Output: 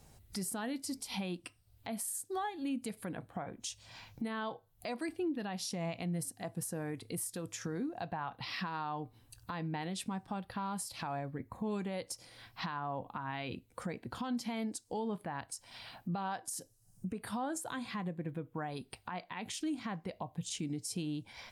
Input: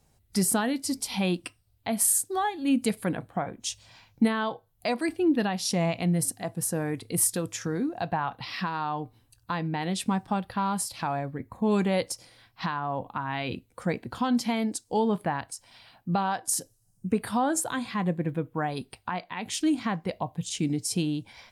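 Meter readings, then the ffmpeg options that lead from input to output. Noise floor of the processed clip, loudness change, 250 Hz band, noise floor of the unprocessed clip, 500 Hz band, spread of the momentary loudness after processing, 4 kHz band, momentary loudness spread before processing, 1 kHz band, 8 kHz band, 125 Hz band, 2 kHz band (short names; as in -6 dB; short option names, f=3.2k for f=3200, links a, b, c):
-67 dBFS, -11.0 dB, -11.0 dB, -66 dBFS, -11.0 dB, 7 LU, -9.0 dB, 10 LU, -10.5 dB, -13.0 dB, -10.0 dB, -9.5 dB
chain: -af "acompressor=threshold=-52dB:ratio=2,alimiter=level_in=10.5dB:limit=-24dB:level=0:latency=1:release=109,volume=-10.5dB,volume=5.5dB"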